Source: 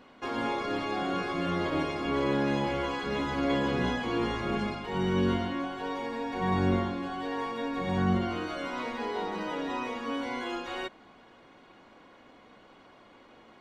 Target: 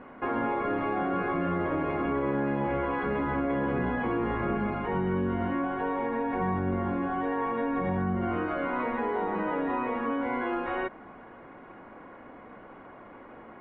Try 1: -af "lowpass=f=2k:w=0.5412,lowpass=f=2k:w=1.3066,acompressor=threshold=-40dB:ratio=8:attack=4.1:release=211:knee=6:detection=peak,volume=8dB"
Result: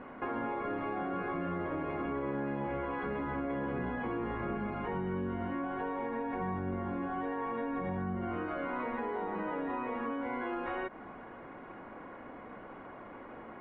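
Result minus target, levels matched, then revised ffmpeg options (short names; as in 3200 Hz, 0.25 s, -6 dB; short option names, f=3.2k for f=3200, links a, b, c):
compressor: peak gain reduction +7 dB
-af "lowpass=f=2k:w=0.5412,lowpass=f=2k:w=1.3066,acompressor=threshold=-32dB:ratio=8:attack=4.1:release=211:knee=6:detection=peak,volume=8dB"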